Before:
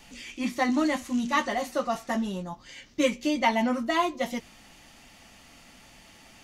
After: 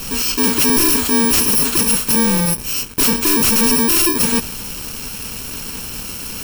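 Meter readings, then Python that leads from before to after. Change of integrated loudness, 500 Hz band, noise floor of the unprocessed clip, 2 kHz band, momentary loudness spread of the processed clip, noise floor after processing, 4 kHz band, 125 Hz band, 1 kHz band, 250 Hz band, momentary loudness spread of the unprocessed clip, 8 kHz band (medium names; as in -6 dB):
+14.5 dB, +6.5 dB, -54 dBFS, +8.5 dB, 14 LU, -29 dBFS, +16.5 dB, +18.0 dB, +3.5 dB, +9.5 dB, 13 LU, +27.0 dB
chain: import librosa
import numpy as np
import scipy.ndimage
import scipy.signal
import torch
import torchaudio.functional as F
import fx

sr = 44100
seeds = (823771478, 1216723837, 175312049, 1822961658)

y = fx.bit_reversed(x, sr, seeds[0], block=64)
y = (np.mod(10.0 ** (19.5 / 20.0) * y + 1.0, 2.0) - 1.0) / 10.0 ** (19.5 / 20.0)
y = fx.leveller(y, sr, passes=5)
y = F.gain(torch.from_numpy(y), 7.5).numpy()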